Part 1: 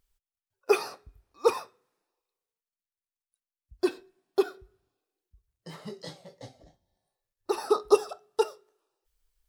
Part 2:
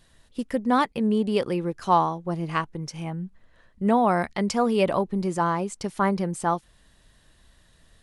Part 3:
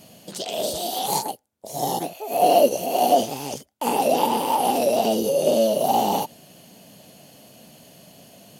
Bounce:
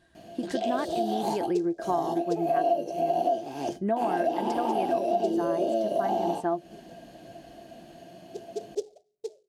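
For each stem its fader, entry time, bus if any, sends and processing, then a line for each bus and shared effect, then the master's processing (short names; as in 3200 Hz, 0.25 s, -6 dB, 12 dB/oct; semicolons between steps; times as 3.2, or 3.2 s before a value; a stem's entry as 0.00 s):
-11.0 dB, 0.85 s, no bus, no send, steep low-pass 660 Hz 48 dB/oct; noise-modulated delay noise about 5400 Hz, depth 0.059 ms
-5.5 dB, 0.00 s, bus A, no send, HPF 41 Hz
+1.0 dB, 0.15 s, bus A, no send, high shelf 9000 Hz -11.5 dB; flange 0.35 Hz, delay 9.9 ms, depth 3.1 ms, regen +75%
bus A: 0.0 dB, small resonant body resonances 340/680/1600 Hz, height 17 dB, ringing for 85 ms; compressor 4:1, threshold -25 dBFS, peak gain reduction 18.5 dB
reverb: off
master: high shelf 5800 Hz -7 dB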